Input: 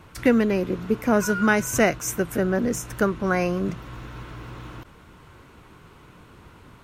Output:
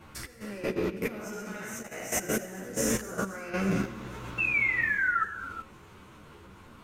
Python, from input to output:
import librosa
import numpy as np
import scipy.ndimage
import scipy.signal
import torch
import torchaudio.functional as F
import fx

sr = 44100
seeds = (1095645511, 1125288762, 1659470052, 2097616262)

y = fx.spec_trails(x, sr, decay_s=1.25)
y = fx.over_compress(y, sr, threshold_db=-25.0, ratio=-0.5)
y = fx.low_shelf(y, sr, hz=100.0, db=-3.5)
y = fx.echo_swing(y, sr, ms=813, ratio=1.5, feedback_pct=58, wet_db=-21.0)
y = fx.spec_paint(y, sr, seeds[0], shape='fall', start_s=4.38, length_s=0.85, low_hz=1300.0, high_hz=2700.0, level_db=-17.0)
y = fx.rev_gated(y, sr, seeds[1], gate_ms=440, shape='flat', drr_db=9.5)
y = fx.level_steps(y, sr, step_db=12)
y = fx.peak_eq(y, sr, hz=2700.0, db=4.5, octaves=0.96, at=(0.88, 3.0))
y = fx.ensemble(y, sr)